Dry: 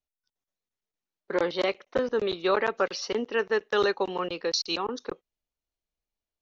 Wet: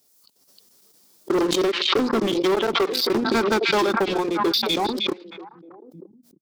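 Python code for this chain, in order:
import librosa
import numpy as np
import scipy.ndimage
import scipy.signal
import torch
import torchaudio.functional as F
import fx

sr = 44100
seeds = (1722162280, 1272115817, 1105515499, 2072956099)

y = scipy.signal.sosfilt(scipy.signal.butter(2, 180.0, 'highpass', fs=sr, output='sos'), x)
y = fx.peak_eq(y, sr, hz=2500.0, db=-8.5, octaves=2.8)
y = fx.hum_notches(y, sr, base_hz=60, count=6)
y = fx.formant_shift(y, sr, semitones=-3)
y = fx.transient(y, sr, attack_db=6, sustain_db=-11)
y = fx.leveller(y, sr, passes=3)
y = fx.high_shelf_res(y, sr, hz=3600.0, db=6.0, q=1.5)
y = 10.0 ** (-15.5 / 20.0) * np.tanh(y / 10.0 ** (-15.5 / 20.0))
y = fx.echo_stepped(y, sr, ms=311, hz=3100.0, octaves=-1.4, feedback_pct=70, wet_db=-11.0)
y = fx.pre_swell(y, sr, db_per_s=34.0)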